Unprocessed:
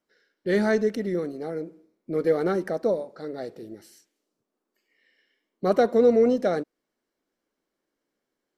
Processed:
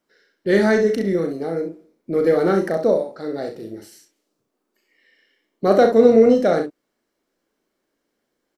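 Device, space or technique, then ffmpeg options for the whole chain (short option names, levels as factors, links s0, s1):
slapback doubling: -filter_complex "[0:a]asplit=3[s0][s1][s2];[s1]adelay=36,volume=0.473[s3];[s2]adelay=66,volume=0.376[s4];[s0][s3][s4]amix=inputs=3:normalize=0,volume=1.88"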